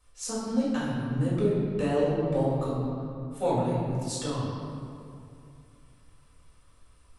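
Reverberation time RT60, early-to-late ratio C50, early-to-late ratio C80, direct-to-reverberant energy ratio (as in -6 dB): 2.6 s, -1.5 dB, 0.5 dB, -9.5 dB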